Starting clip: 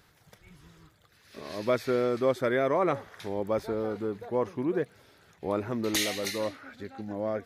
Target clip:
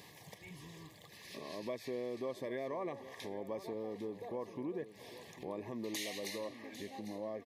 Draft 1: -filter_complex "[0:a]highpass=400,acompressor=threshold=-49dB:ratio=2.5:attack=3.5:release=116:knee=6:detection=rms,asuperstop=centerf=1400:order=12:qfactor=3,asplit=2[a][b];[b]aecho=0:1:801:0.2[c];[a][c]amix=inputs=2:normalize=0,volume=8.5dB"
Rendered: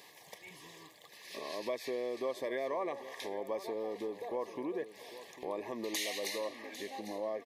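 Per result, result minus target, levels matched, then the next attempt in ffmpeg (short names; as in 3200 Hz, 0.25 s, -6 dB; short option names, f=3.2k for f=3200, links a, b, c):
125 Hz band -12.0 dB; compressor: peak gain reduction -5.5 dB
-filter_complex "[0:a]highpass=140,acompressor=threshold=-49dB:ratio=2.5:attack=3.5:release=116:knee=6:detection=rms,asuperstop=centerf=1400:order=12:qfactor=3,asplit=2[a][b];[b]aecho=0:1:801:0.2[c];[a][c]amix=inputs=2:normalize=0,volume=8.5dB"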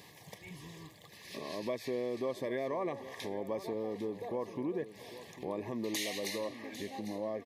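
compressor: peak gain reduction -4.5 dB
-filter_complex "[0:a]highpass=140,acompressor=threshold=-56.5dB:ratio=2.5:attack=3.5:release=116:knee=6:detection=rms,asuperstop=centerf=1400:order=12:qfactor=3,asplit=2[a][b];[b]aecho=0:1:801:0.2[c];[a][c]amix=inputs=2:normalize=0,volume=8.5dB"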